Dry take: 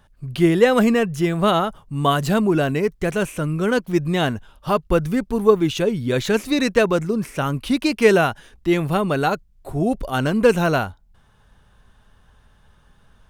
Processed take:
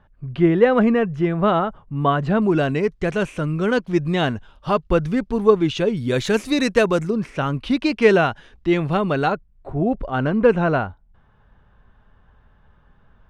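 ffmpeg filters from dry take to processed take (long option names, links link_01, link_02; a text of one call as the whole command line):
ffmpeg -i in.wav -af "asetnsamples=nb_out_samples=441:pad=0,asendcmd='2.42 lowpass f 5100;5.97 lowpass f 9800;7.1 lowpass f 4200;9.32 lowpass f 2000',lowpass=2000" out.wav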